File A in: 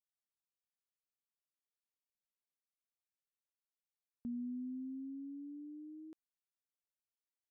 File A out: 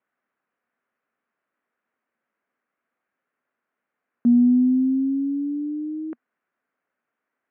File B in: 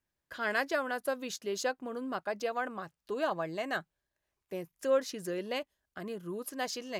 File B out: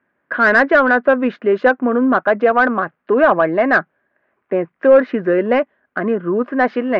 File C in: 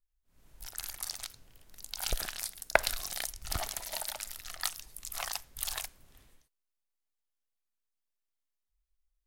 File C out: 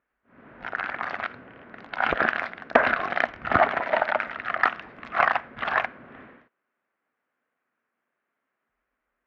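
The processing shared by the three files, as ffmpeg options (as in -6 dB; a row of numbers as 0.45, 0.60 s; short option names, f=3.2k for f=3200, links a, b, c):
-filter_complex "[0:a]aeval=exprs='0.668*sin(PI/2*6.31*val(0)/0.668)':c=same,highpass=150,equalizer=f=240:t=q:w=4:g=8,equalizer=f=880:t=q:w=4:g=-5,equalizer=f=1.5k:t=q:w=4:g=3,lowpass=f=2.1k:w=0.5412,lowpass=f=2.1k:w=1.3066,asplit=2[a][b];[b]highpass=f=720:p=1,volume=11dB,asoftclip=type=tanh:threshold=-0.5dB[c];[a][c]amix=inputs=2:normalize=0,lowpass=f=1.4k:p=1,volume=-6dB"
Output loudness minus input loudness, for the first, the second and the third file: +24.5, +19.5, +10.5 LU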